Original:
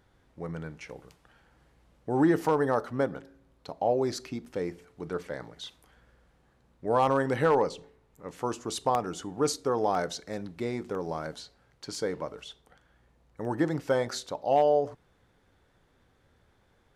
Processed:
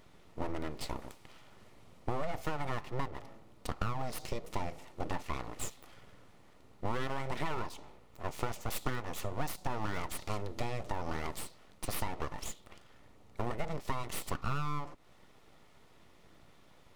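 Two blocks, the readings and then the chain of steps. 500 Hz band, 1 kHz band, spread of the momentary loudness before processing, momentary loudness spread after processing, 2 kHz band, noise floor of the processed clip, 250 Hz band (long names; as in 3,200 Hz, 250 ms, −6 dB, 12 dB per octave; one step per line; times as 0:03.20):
−14.0 dB, −8.5 dB, 20 LU, 14 LU, −4.5 dB, −59 dBFS, −11.0 dB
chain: full-wave rectification
notch filter 1,600 Hz, Q 7
downward compressor 10 to 1, threshold −37 dBFS, peak gain reduction 18.5 dB
level +7.5 dB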